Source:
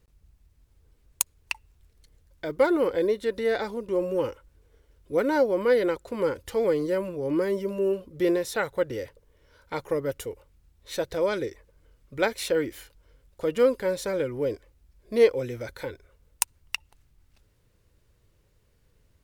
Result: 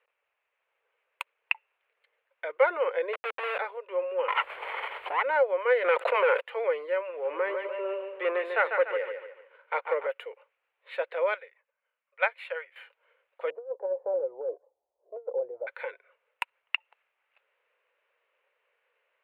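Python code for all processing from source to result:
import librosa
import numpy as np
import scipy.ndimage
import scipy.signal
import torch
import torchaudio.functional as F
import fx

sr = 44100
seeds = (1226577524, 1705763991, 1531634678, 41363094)

y = fx.chain(x, sr, fx.peak_eq(hz=870.0, db=-9.0, octaves=0.47),
    fx.schmitt(flips_db=-30.5), at=(3.13, 3.59))
y = fx.chain(y, sr, fx.lower_of_two(delay_ms=0.92),
    fx.env_flatten(amount_pct=100), at=(4.28, 5.23))
y = fx.chain(y, sr, fx.highpass(hz=370.0, slope=24),
    fx.leveller(passes=2),
    fx.env_flatten(amount_pct=70), at=(5.84, 6.41))
y = fx.chain(y, sr, fx.echo_feedback(ms=146, feedback_pct=41, wet_db=-7),
    fx.leveller(passes=1),
    fx.lowpass(hz=3100.0, slope=6), at=(7.09, 10.07))
y = fx.chain(y, sr, fx.highpass(hz=570.0, slope=24),
    fx.upward_expand(threshold_db=-45.0, expansion=1.5), at=(11.34, 12.76))
y = fx.chain(y, sr, fx.cheby1_lowpass(hz=800.0, order=4),
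    fx.over_compress(threshold_db=-27.0, ratio=-0.5), at=(13.5, 15.67))
y = scipy.signal.sosfilt(scipy.signal.ellip(3, 1.0, 40, [500.0, 2600.0], 'bandpass', fs=sr, output='sos'), y)
y = fx.tilt_eq(y, sr, slope=3.0)
y = F.gain(torch.from_numpy(y), 1.5).numpy()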